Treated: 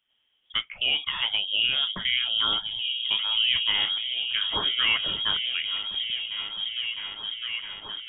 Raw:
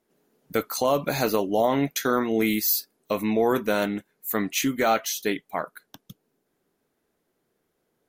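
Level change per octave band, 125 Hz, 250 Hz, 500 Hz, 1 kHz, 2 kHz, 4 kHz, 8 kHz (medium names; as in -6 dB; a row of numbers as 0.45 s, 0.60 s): -13.0 dB, -22.5 dB, -22.5 dB, -10.0 dB, +3.0 dB, +15.5 dB, under -40 dB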